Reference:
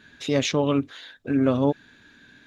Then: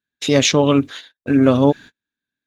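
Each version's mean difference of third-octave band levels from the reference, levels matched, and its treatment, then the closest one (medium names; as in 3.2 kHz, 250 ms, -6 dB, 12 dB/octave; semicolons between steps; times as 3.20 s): 3.5 dB: gate -40 dBFS, range -43 dB; treble shelf 4.9 kHz +7.5 dB; trim +7.5 dB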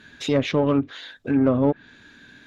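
2.0 dB: low-pass that closes with the level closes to 1.5 kHz, closed at -17 dBFS; in parallel at -5.5 dB: saturation -23 dBFS, distortion -8 dB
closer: second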